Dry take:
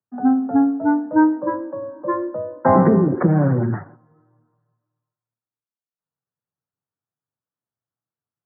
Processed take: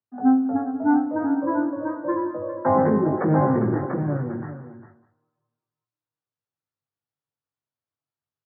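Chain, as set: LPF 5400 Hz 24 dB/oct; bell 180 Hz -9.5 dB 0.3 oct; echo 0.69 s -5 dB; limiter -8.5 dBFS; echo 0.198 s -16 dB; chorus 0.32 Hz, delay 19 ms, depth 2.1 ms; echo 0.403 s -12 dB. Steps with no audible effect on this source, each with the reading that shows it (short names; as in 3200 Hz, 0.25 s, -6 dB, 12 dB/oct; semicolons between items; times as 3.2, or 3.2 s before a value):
LPF 5400 Hz: input band ends at 1600 Hz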